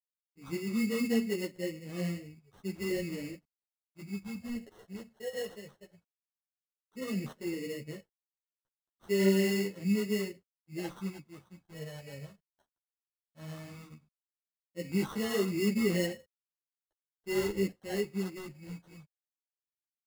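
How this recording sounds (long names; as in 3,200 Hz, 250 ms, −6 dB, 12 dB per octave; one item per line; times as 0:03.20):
a quantiser's noise floor 12 bits, dither none
phaser sweep stages 6, 0.14 Hz, lowest notch 280–2,800 Hz
aliases and images of a low sample rate 2,400 Hz, jitter 0%
a shimmering, thickened sound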